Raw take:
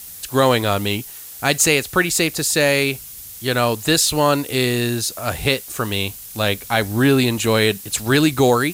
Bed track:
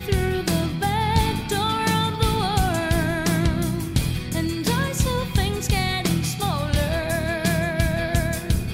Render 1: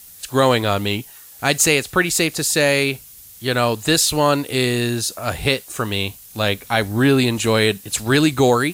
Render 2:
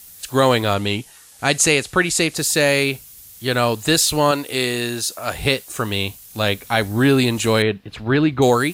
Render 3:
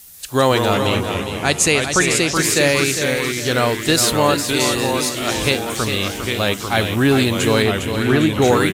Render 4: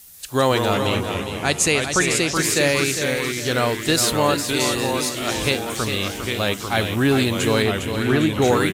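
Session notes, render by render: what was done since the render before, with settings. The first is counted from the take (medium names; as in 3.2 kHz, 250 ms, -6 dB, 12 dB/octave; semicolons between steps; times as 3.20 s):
noise print and reduce 6 dB
0.74–2.36 s: low-pass 11 kHz 24 dB/octave; 4.31–5.36 s: bass shelf 210 Hz -10.5 dB; 7.62–8.42 s: distance through air 360 m
feedback delay 405 ms, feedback 37%, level -8 dB; ever faster or slower copies 135 ms, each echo -2 st, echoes 3, each echo -6 dB
trim -3 dB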